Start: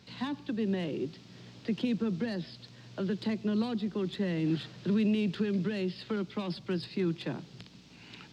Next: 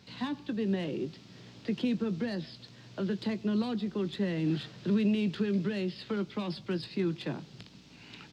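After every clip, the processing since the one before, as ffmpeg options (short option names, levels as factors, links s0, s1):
-filter_complex "[0:a]asplit=2[s0][s1];[s1]adelay=20,volume=0.224[s2];[s0][s2]amix=inputs=2:normalize=0"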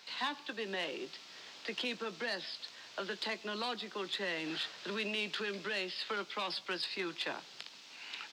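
-af "highpass=830,volume=2"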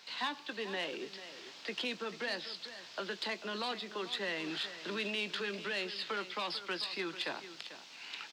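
-af "aecho=1:1:443:0.224"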